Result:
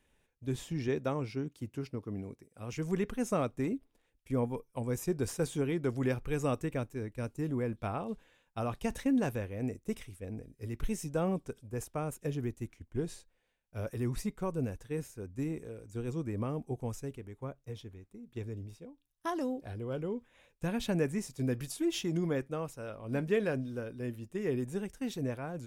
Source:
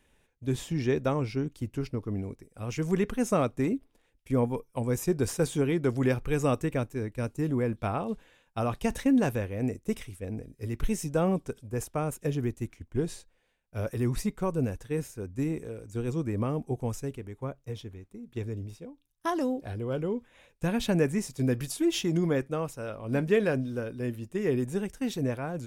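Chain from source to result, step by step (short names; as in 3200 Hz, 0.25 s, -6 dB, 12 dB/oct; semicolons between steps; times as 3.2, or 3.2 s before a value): 0.88–2.73 HPF 100 Hz; gain -5.5 dB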